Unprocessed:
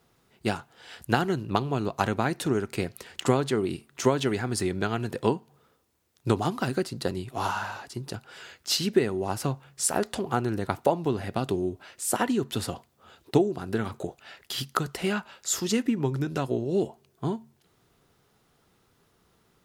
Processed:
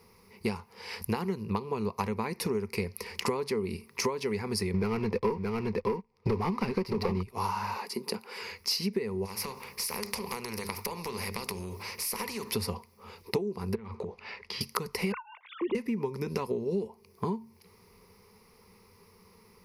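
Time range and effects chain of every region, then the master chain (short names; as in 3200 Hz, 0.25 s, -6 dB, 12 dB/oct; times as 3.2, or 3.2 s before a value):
4.74–7.23 LPF 3400 Hz + sample leveller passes 3 + echo 0.622 s -6.5 dB
7.73–8.41 HPF 200 Hz 24 dB/oct + bell 5600 Hz -5.5 dB 0.28 oct
9.25–12.51 compressor 3:1, threshold -32 dBFS + notches 50/100/150/200/250/300/350/400/450 Hz + spectral compressor 2:1
13.75–14.61 LPF 3800 Hz + compressor 10:1, threshold -38 dBFS
15.12–15.75 sine-wave speech + air absorption 370 m
whole clip: ripple EQ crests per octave 0.86, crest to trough 15 dB; compressor 5:1, threshold -33 dBFS; gain +4 dB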